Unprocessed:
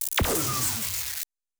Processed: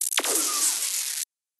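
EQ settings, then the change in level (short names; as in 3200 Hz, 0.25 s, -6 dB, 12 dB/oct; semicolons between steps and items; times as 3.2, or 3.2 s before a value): brick-wall FIR band-pass 260–12000 Hz; high shelf 2700 Hz +10.5 dB; -3.5 dB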